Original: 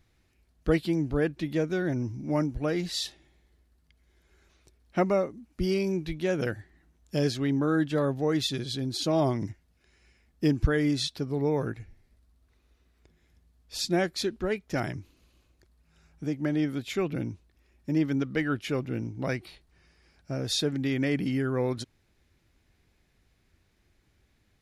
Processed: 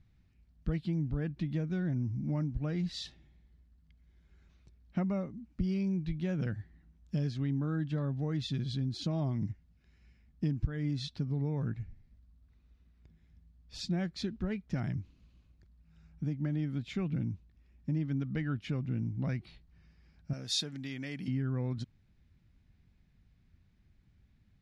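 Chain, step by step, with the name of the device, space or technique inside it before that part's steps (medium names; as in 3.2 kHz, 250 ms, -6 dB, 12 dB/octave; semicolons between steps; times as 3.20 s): jukebox (low-pass 5.2 kHz 12 dB/octave; resonant low shelf 270 Hz +10 dB, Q 1.5; compression 3:1, threshold -23 dBFS, peak gain reduction 13.5 dB); 20.33–21.28 s: RIAA curve recording; trim -7.5 dB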